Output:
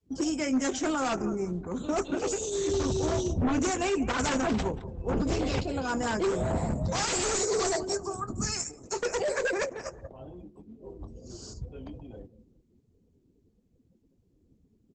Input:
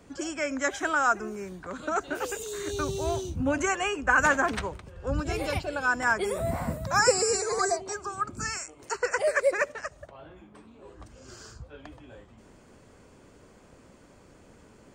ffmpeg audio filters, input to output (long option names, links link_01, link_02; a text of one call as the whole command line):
ffmpeg -i in.wav -filter_complex "[0:a]bandreject=frequency=590:width=12,asplit=2[link_01][link_02];[link_02]adelay=22,volume=-10.5dB[link_03];[link_01][link_03]amix=inputs=2:normalize=0,agate=range=-12dB:threshold=-50dB:ratio=16:detection=peak,asetrate=42845,aresample=44100,atempo=1.0293,acontrast=40,equalizer=frequency=1500:width_type=o:width=1.3:gain=-14,asplit=2[link_04][link_05];[link_05]adelay=187,lowpass=frequency=2300:poles=1,volume=-15.5dB,asplit=2[link_06][link_07];[link_07]adelay=187,lowpass=frequency=2300:poles=1,volume=0.36,asplit=2[link_08][link_09];[link_09]adelay=187,lowpass=frequency=2300:poles=1,volume=0.36[link_10];[link_04][link_06][link_08][link_10]amix=inputs=4:normalize=0,aeval=exprs='0.0794*(abs(mod(val(0)/0.0794+3,4)-2)-1)':channel_layout=same,adynamicequalizer=threshold=0.00501:dfrequency=210:dqfactor=1.3:tfrequency=210:tqfactor=1.3:attack=5:release=100:ratio=0.375:range=1.5:mode=boostabove:tftype=bell,afftdn=noise_reduction=22:noise_floor=-52" -ar 48000 -c:a libopus -b:a 12k out.opus